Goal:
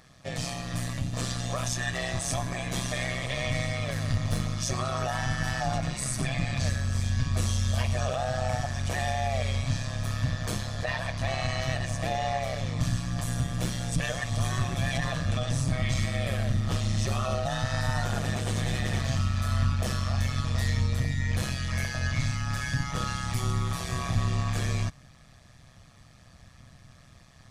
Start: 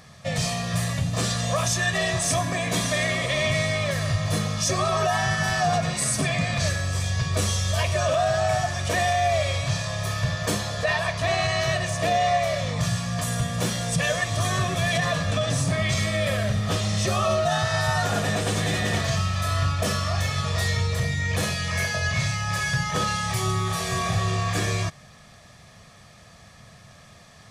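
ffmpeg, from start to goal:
-filter_complex "[0:a]asettb=1/sr,asplit=3[a][b][c];[a]atrim=end=3.864[d];[b]atrim=start=3.86:end=4.43,asetpts=PTS-STARTPTS,afade=t=in:d=0.004:c=qsin,afade=t=out:st=0.566:d=0.004:c=qsin,aeval=exprs='0.211*(cos(1*acos(clip(val(0)/0.211,-1,1)))-cos(1*PI/2))+0.0299*(cos(4*acos(clip(val(0)/0.211,-1,1)))-cos(4*PI/2))+0.0188*(cos(6*acos(clip(val(0)/0.211,-1,1)))-cos(6*PI/2))':c=same[e];[c]atrim=start=4.426[f];[d][e]acrossfade=d=0.004:c1=hsin:c2=qsin[g];[g][f]acrossfade=d=0.004:c1=qsin:c2=hsin,tremolo=f=130:d=0.788,asubboost=boost=2:cutoff=200,volume=-4dB"

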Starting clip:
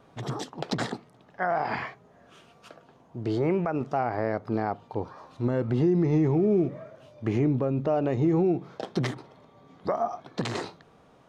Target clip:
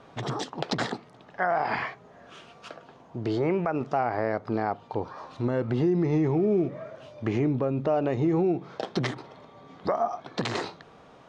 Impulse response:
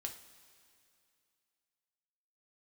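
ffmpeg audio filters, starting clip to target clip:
-filter_complex "[0:a]lowpass=6.6k,lowshelf=f=360:g=-5,asplit=2[a][b];[b]acompressor=threshold=-38dB:ratio=6,volume=2dB[c];[a][c]amix=inputs=2:normalize=0"

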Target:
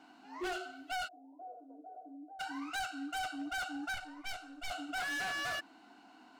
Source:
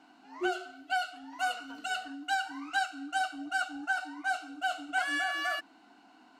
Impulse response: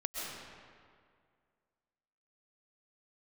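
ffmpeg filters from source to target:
-filter_complex "[0:a]asettb=1/sr,asplit=3[a][b][c];[a]atrim=end=3.944[d];[b]atrim=start=3.94:end=4.71,asetpts=PTS-STARTPTS,afade=t=in:d=0.004:c=qsin,afade=t=out:st=0.766:d=0.004:c=qsin,aeval=exprs='0.0944*(cos(1*acos(clip(val(0)/0.0944,-1,1)))-cos(1*PI/2))+0.0376*(cos(2*acos(clip(val(0)/0.0944,-1,1)))-cos(2*PI/2))+0.0473*(cos(3*acos(clip(val(0)/0.0944,-1,1)))-cos(3*PI/2))':c=same[e];[c]atrim=start=4.706[f];[d][e]acrossfade=d=0.004:c1=hsin:c2=qsin[g];[g][f]acrossfade=d=0.004:c1=qsin:c2=hsin,asoftclip=type=hard:threshold=-35dB,asplit=3[h][i][j];[h]afade=t=out:st=1.07:d=0.02[k];[i]asuperpass=centerf=450:order=8:qfactor=1.2,afade=t=in:st=1.07:d=0.02,afade=t=out:st=2.39:d=0.02[l];[j]afade=t=in:st=2.39:d=0.02[m];[k][l][m]amix=inputs=3:normalize=0"

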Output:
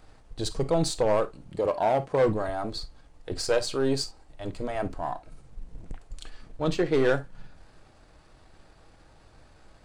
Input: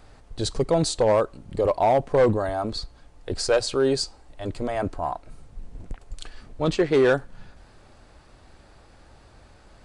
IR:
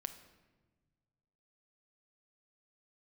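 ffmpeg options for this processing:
-filter_complex "[0:a]aeval=exprs='if(lt(val(0),0),0.708*val(0),val(0))':c=same,asettb=1/sr,asplit=3[a][b][c];[a]atrim=end=1.494[d];[b]atrim=start=1.49:end=2.27,asetpts=PTS-STARTPTS,afade=t=in:d=0.004:c=qsin,afade=t=out:st=0.776:d=0.004:c=qsin,highpass=f=110:p=1[e];[c]atrim=start=2.266[f];[d][e]acrossfade=d=0.004:c1=hsin:c2=qsin[g];[g][f]acrossfade=d=0.004:c1=qsin:c2=hsin[h];[1:a]atrim=start_sample=2205,atrim=end_sample=3087[i];[h][i]afir=irnorm=-1:irlink=0"

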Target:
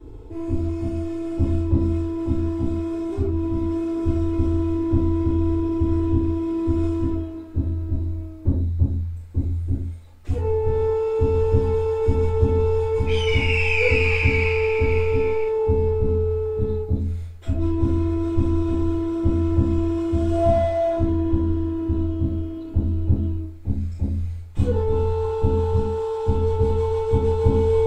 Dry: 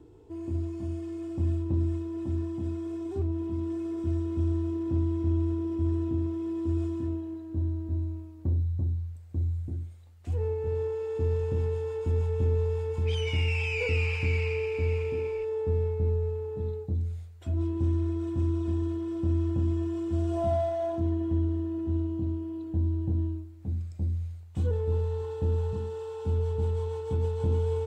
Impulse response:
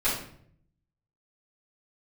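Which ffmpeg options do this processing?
-filter_complex "[0:a]lowshelf=f=98:g=6.5[a];[1:a]atrim=start_sample=2205,atrim=end_sample=3969[b];[a][b]afir=irnorm=-1:irlink=0"

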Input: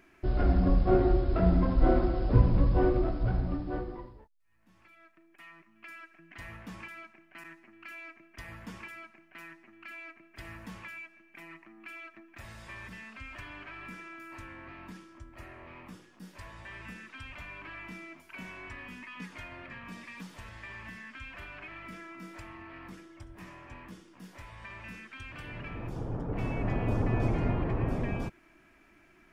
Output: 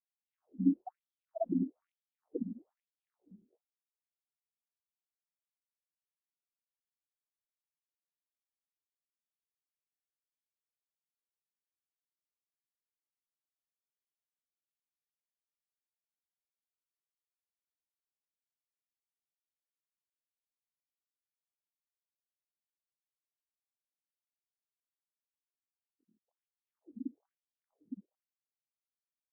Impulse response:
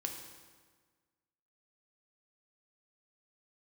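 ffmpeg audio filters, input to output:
-af "acontrast=29,afftfilt=real='re*gte(hypot(re,im),0.447)':imag='im*gte(hypot(re,im),0.447)':win_size=1024:overlap=0.75,afftfilt=real='re*between(b*sr/1024,260*pow(4600/260,0.5+0.5*sin(2*PI*1.1*pts/sr))/1.41,260*pow(4600/260,0.5+0.5*sin(2*PI*1.1*pts/sr))*1.41)':imag='im*between(b*sr/1024,260*pow(4600/260,0.5+0.5*sin(2*PI*1.1*pts/sr))/1.41,260*pow(4600/260,0.5+0.5*sin(2*PI*1.1*pts/sr))*1.41)':win_size=1024:overlap=0.75"

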